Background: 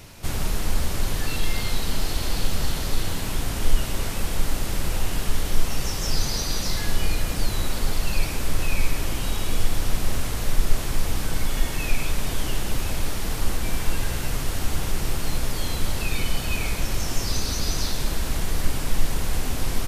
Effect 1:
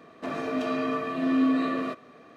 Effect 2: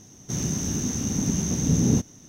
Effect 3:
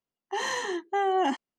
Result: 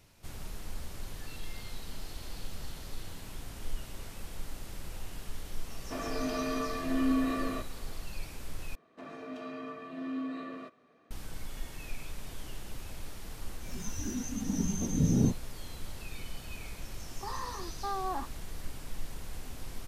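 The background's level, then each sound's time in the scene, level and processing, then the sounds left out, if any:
background -17 dB
5.68 s: add 1 -5.5 dB
8.75 s: replace with 1 -13.5 dB
13.31 s: add 2 -5 dB + spectral noise reduction 23 dB
16.90 s: add 3 -15 dB + resonant low-pass 1.2 kHz, resonance Q 7.7

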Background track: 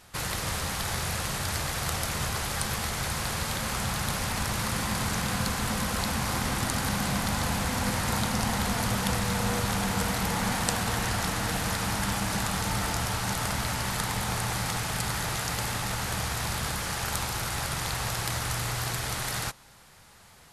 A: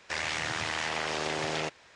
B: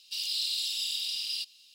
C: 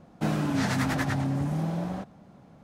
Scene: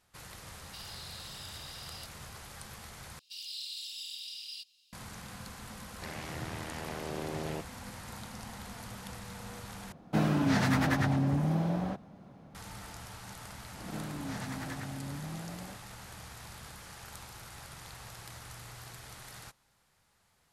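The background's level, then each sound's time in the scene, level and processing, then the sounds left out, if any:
background track -17 dB
0.62 s: add B -7 dB + compression, threshold -38 dBFS
3.19 s: replace with B -10 dB
5.92 s: add A -7 dB + tilt shelf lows +9 dB, about 670 Hz
9.92 s: replace with C -0.5 dB + peaking EQ 7.7 kHz -4 dB 0.72 oct
13.71 s: add C -13 dB + swell ahead of each attack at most 85 dB/s

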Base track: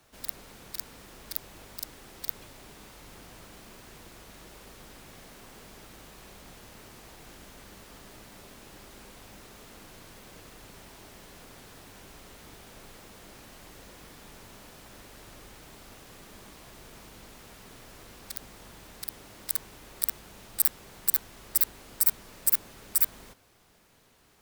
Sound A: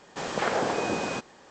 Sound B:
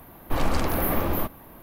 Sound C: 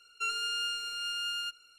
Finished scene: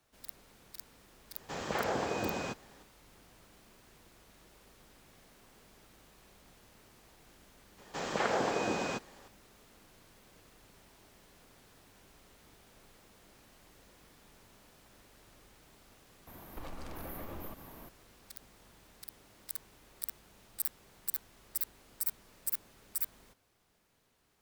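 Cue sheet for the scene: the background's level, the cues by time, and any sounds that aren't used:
base track -11 dB
1.33 s: add A -7 dB + peaking EQ 70 Hz +12 dB 1.2 oct
7.78 s: add A -4.5 dB
16.27 s: add B -4.5 dB + compression 8:1, threshold -35 dBFS
not used: C

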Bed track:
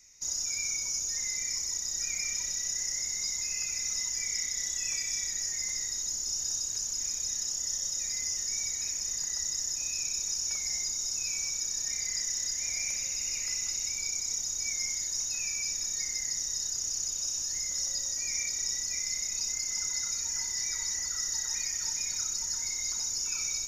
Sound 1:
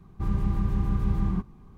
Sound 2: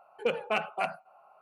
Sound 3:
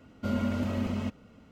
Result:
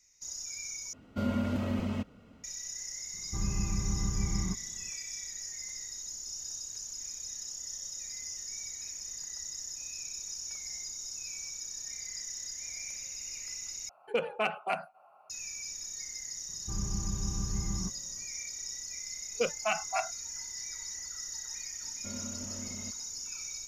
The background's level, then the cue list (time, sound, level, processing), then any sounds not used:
bed track -8 dB
0.93 s: replace with 3 -1.5 dB
3.13 s: add 1 -6.5 dB
13.89 s: replace with 2 -1.5 dB
16.48 s: add 1 -9 dB
19.15 s: add 2 -1 dB + spectral noise reduction 26 dB
21.81 s: add 3 -14 dB

